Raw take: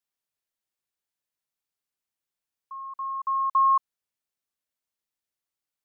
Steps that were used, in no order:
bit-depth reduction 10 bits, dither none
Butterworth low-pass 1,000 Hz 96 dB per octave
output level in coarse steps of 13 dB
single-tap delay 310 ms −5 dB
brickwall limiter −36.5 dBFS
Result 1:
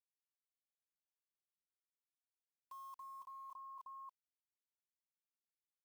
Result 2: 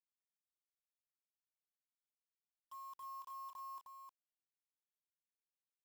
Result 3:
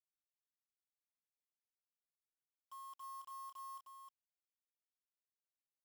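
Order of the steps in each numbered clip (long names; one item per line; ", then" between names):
Butterworth low-pass, then bit-depth reduction, then single-tap delay, then brickwall limiter, then output level in coarse steps
output level in coarse steps, then brickwall limiter, then Butterworth low-pass, then bit-depth reduction, then single-tap delay
brickwall limiter, then Butterworth low-pass, then output level in coarse steps, then bit-depth reduction, then single-tap delay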